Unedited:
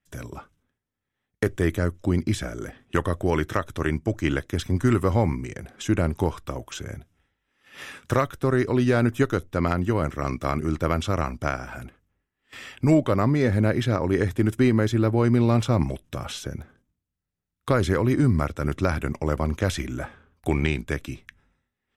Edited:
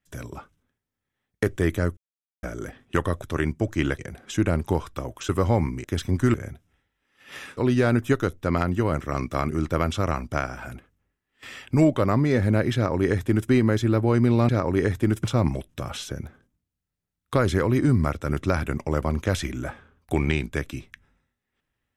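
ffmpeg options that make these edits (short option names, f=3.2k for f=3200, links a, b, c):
-filter_complex "[0:a]asplit=11[a][b][c][d][e][f][g][h][i][j][k];[a]atrim=end=1.97,asetpts=PTS-STARTPTS,afade=t=out:st=1.966:d=0.004:c=hsin[l];[b]atrim=start=1.97:end=2.43,asetpts=PTS-STARTPTS,volume=0[m];[c]atrim=start=2.43:end=3.222,asetpts=PTS-STARTPTS,afade=t=in:d=0.004:c=hsin[n];[d]atrim=start=3.678:end=4.452[o];[e]atrim=start=5.498:end=6.802[p];[f]atrim=start=4.948:end=5.502[q];[g]atrim=start=4.448:end=4.952[r];[h]atrim=start=6.798:end=8.032[s];[i]atrim=start=8.668:end=15.592[t];[j]atrim=start=13.848:end=14.602[u];[k]atrim=start=15.588[v];[l][m][n]concat=n=3:v=0:a=1[w];[w][o]acrossfade=d=0.004:c1=hsin:c2=hsin[x];[x][p]acrossfade=d=0.004:c1=hsin:c2=hsin[y];[y][q]acrossfade=d=0.004:c1=hsin:c2=hsin[z];[z][r]acrossfade=d=0.004:c1=hsin:c2=hsin[aa];[aa][s]acrossfade=d=0.004:c1=hsin:c2=hsin[ab];[ab][t]acrossfade=d=0.004:c1=hsin:c2=hsin[ac];[ac][u]acrossfade=d=0.004:c1=hsin:c2=hsin[ad];[ad][v]acrossfade=d=0.004:c1=hsin:c2=hsin"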